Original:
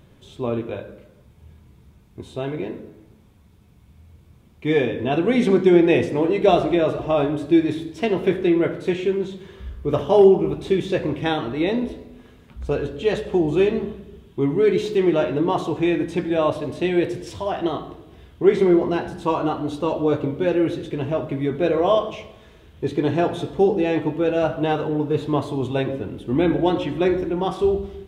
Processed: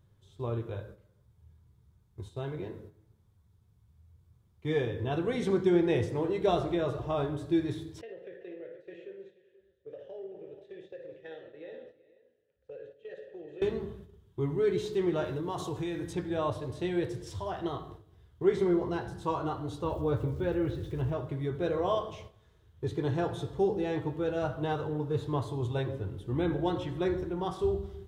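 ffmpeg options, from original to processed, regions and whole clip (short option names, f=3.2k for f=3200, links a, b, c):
-filter_complex "[0:a]asettb=1/sr,asplit=3[a][b][c];[a]atrim=end=8.014[d];[b]atrim=start=8.01:end=13.62,asetpts=PTS-STARTPTS,afade=t=in:d=0.004:c=qsin,afade=t=out:st=5.606:d=0.004:c=qsin,asplit=3[e][f][g];[e]bandpass=f=530:t=q:w=8,volume=0dB[h];[f]bandpass=f=1.84k:t=q:w=8,volume=-6dB[i];[g]bandpass=f=2.48k:t=q:w=8,volume=-9dB[j];[h][i][j]amix=inputs=3:normalize=0,acompressor=threshold=-29dB:ratio=6:attack=3.2:release=140:knee=1:detection=peak,aecho=1:1:56|196|382|483:0.335|0.133|0.224|0.224,atrim=end_sample=247401[k];[c]atrim=start=13.616[l];[d][k]acrossfade=d=0.004:c1=hsin:c2=qsin[m];[m][l]acrossfade=d=0.004:c1=qsin:c2=hsin,asettb=1/sr,asplit=3[n][o][p];[n]atrim=end=15.244[q];[o]atrim=start=15.24:end=16.13,asetpts=PTS-STARTPTS,afade=t=in:d=0.004:c=qsin,afade=t=out:st=0.886:d=0.004:c=qsin,highshelf=f=4.4k:g=8.5,acompressor=threshold=-20dB:ratio=4:attack=3.2:release=140:knee=1:detection=peak[r];[p]atrim=start=16.126[s];[q][r]acrossfade=d=0.004:c1=hsin:c2=qsin[t];[t][s]acrossfade=d=0.004:c1=qsin:c2=hsin,asettb=1/sr,asplit=3[u][v][w];[u]atrim=end=19.844[x];[v]atrim=start=19.84:end=21.13,asetpts=PTS-STARTPTS,afade=t=in:d=0.004:c=qsin,afade=t=out:st=1.286:d=0.004:c=qsin,lowpass=4k,equalizer=f=69:w=1.7:g=13.5,aeval=exprs='val(0)*gte(abs(val(0)),0.00531)':c=same[y];[w]atrim=start=21.126[z];[x][y]acrossfade=d=0.004:c1=hsin:c2=qsin[aa];[aa][z]acrossfade=d=0.004:c1=qsin:c2=hsin,agate=range=-8dB:threshold=-39dB:ratio=16:detection=peak,equalizer=f=100:t=o:w=0.67:g=9,equalizer=f=250:t=o:w=0.67:g=-10,equalizer=f=630:t=o:w=0.67:g=-5,equalizer=f=2.5k:t=o:w=0.67:g=-9,volume=-7dB"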